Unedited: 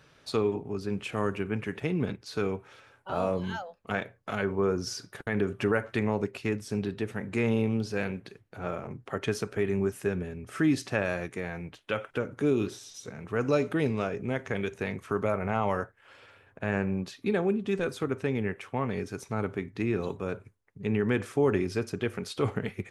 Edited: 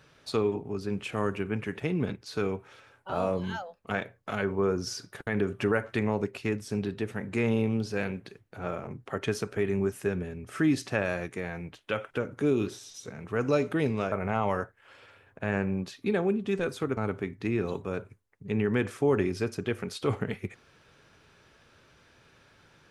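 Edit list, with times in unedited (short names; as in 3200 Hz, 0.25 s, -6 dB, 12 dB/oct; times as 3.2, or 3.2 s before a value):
14.12–15.32 cut
18.17–19.32 cut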